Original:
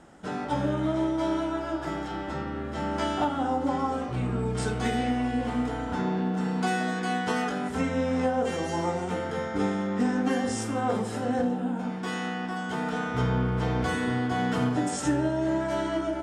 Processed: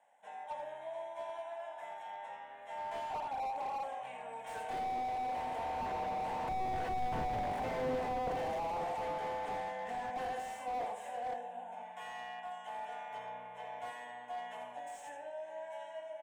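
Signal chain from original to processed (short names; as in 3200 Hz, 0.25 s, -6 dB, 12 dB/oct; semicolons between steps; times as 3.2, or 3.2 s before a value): Doppler pass-by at 7.27, 8 m/s, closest 5.8 m; resonant high-pass 700 Hz, resonance Q 1.6; fixed phaser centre 1300 Hz, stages 6; echo 82 ms -8.5 dB; slew limiter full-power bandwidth 6.6 Hz; gain +6 dB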